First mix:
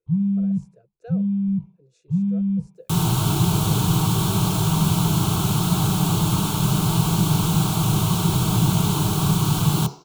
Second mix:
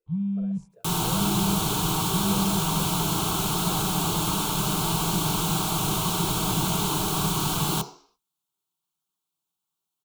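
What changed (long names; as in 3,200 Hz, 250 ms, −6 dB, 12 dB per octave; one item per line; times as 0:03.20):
second sound: entry −2.05 s
master: add parametric band 110 Hz −13 dB 1.6 octaves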